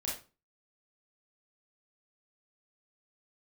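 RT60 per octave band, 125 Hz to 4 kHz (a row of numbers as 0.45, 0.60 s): 0.45, 0.40, 0.35, 0.30, 0.25, 0.25 s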